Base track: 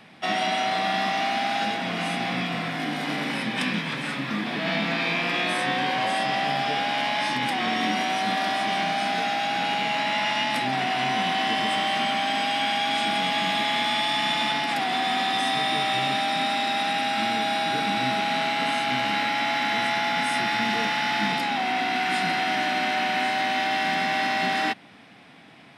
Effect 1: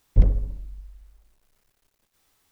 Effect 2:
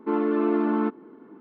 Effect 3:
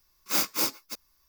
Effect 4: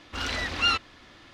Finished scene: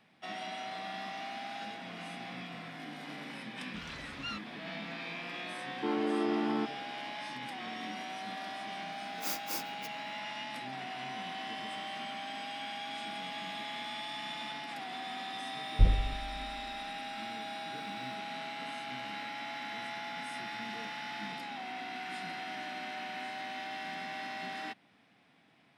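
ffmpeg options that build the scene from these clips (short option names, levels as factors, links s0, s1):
-filter_complex "[0:a]volume=0.158[s0];[4:a]atrim=end=1.33,asetpts=PTS-STARTPTS,volume=0.133,afade=t=in:d=0.004:c=hsin,afade=t=out:st=1.326:d=0.004:c=hsin,adelay=159201S[s1];[2:a]atrim=end=1.4,asetpts=PTS-STARTPTS,volume=0.376,afade=t=in:d=0.004:c=hsin,afade=t=out:st=1.396:d=0.004:c=hsin,adelay=5760[s2];[3:a]atrim=end=1.28,asetpts=PTS-STARTPTS,volume=0.266,afade=t=in:d=0.004:c=hsin,afade=t=out:st=1.276:d=0.004:c=hsin,adelay=8920[s3];[1:a]atrim=end=2.51,asetpts=PTS-STARTPTS,volume=0.447,afade=t=in:d=0.004:c=hsin,afade=t=out:st=2.506:d=0.004:c=hsin,adelay=15630[s4];[s0][s1][s2][s3][s4]amix=inputs=5:normalize=0"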